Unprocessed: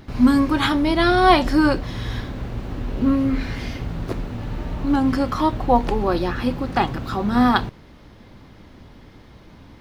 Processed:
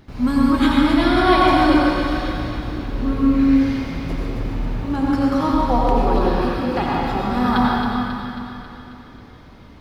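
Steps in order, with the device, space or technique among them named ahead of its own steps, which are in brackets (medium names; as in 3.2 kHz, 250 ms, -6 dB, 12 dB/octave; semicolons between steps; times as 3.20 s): feedback echo behind a high-pass 271 ms, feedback 58%, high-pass 1.5 kHz, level -5.5 dB; stairwell (reverberation RT60 2.6 s, pre-delay 82 ms, DRR -4.5 dB); trim -5 dB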